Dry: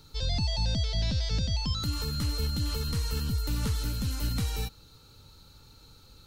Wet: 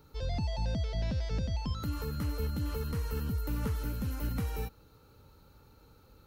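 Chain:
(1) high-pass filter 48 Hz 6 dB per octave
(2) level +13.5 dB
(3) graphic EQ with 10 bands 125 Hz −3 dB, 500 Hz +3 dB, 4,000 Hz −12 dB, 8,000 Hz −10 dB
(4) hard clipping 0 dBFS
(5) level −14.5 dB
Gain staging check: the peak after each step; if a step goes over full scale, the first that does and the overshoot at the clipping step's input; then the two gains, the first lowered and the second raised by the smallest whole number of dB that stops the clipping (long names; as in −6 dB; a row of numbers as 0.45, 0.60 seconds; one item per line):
−19.0, −5.5, −6.0, −6.0, −20.5 dBFS
no step passes full scale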